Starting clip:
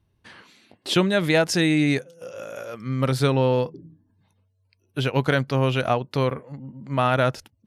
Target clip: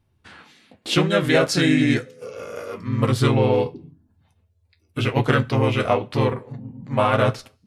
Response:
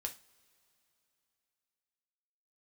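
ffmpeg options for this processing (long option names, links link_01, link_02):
-filter_complex "[0:a]asplit=2[link_01][link_02];[link_02]asetrate=37084,aresample=44100,atempo=1.18921,volume=-1dB[link_03];[link_01][link_03]amix=inputs=2:normalize=0,flanger=delay=7.7:depth=5.3:regen=-52:speed=0.94:shape=sinusoidal,asplit=2[link_04][link_05];[1:a]atrim=start_sample=2205,afade=type=out:start_time=0.32:duration=0.01,atrim=end_sample=14553[link_06];[link_05][link_06]afir=irnorm=-1:irlink=0,volume=-4dB[link_07];[link_04][link_07]amix=inputs=2:normalize=0"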